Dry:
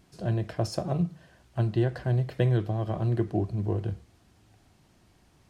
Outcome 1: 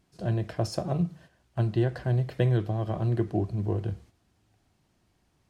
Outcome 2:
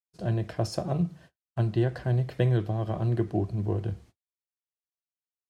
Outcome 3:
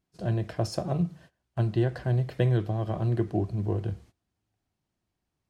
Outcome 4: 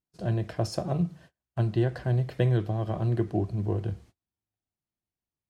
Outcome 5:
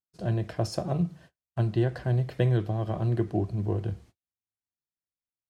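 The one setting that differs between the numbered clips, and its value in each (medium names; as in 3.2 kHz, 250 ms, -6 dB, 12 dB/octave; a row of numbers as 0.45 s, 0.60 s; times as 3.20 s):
gate, range: -8 dB, -60 dB, -21 dB, -34 dB, -47 dB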